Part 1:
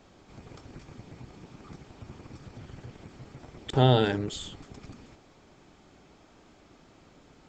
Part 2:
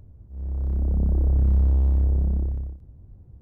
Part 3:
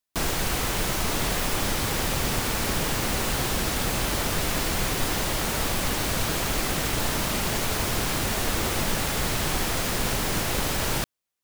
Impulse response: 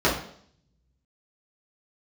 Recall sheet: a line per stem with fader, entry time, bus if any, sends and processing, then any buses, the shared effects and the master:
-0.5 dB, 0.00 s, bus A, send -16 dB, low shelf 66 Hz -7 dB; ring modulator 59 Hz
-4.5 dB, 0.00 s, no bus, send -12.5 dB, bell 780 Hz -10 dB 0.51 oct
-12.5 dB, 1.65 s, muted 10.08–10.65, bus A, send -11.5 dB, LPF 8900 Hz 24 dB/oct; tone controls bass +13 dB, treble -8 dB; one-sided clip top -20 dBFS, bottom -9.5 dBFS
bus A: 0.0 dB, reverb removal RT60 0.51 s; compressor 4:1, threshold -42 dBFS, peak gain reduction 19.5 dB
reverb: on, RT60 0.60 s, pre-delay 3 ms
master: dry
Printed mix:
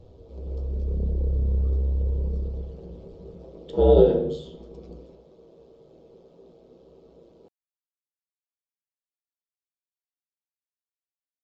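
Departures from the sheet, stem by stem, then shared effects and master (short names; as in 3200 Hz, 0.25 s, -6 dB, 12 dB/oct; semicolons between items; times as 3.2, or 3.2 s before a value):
stem 2: send off; stem 3: muted; master: extra EQ curve 170 Hz 0 dB, 310 Hz -4 dB, 470 Hz +11 dB, 660 Hz -1 dB, 1800 Hz -17 dB, 3600 Hz -5 dB, 15000 Hz -17 dB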